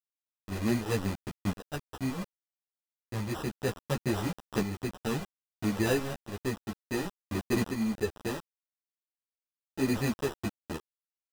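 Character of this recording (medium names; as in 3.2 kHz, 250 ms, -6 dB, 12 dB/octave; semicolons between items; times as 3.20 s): a quantiser's noise floor 6-bit, dither none; tremolo saw up 0.65 Hz, depth 60%; aliases and images of a low sample rate 2.2 kHz, jitter 0%; a shimmering, thickened sound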